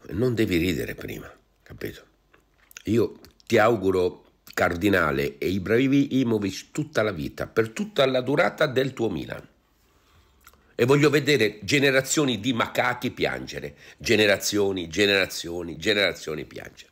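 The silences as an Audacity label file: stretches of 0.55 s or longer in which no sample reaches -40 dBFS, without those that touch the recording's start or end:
9.450000	10.470000	silence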